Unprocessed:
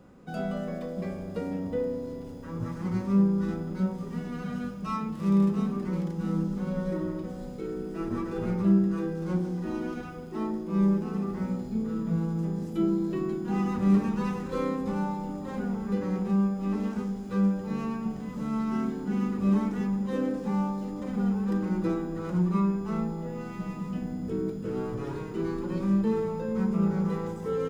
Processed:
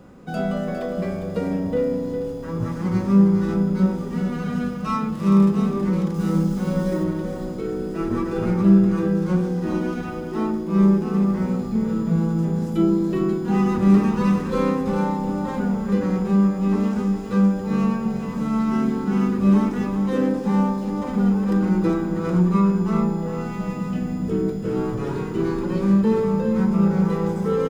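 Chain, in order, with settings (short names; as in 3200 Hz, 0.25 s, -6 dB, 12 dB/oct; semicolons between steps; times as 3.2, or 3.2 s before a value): 6.14–7.04 high shelf 5100 Hz +9.5 dB; echo 0.406 s -8.5 dB; gain +7.5 dB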